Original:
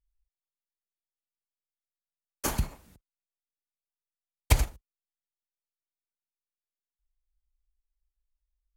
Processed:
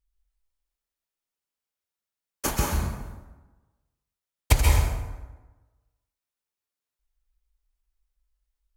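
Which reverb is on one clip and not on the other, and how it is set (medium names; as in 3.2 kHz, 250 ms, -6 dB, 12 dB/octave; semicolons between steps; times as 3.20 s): plate-style reverb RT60 1.2 s, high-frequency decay 0.6×, pre-delay 120 ms, DRR -1.5 dB; trim +2.5 dB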